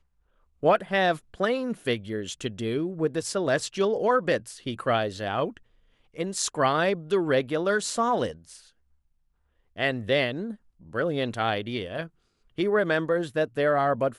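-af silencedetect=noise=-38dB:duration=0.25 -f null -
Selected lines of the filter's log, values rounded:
silence_start: 0.00
silence_end: 0.63 | silence_duration: 0.63
silence_start: 5.57
silence_end: 6.16 | silence_duration: 0.59
silence_start: 8.56
silence_end: 9.77 | silence_duration: 1.21
silence_start: 10.54
silence_end: 10.93 | silence_duration: 0.39
silence_start: 12.07
silence_end: 12.58 | silence_duration: 0.52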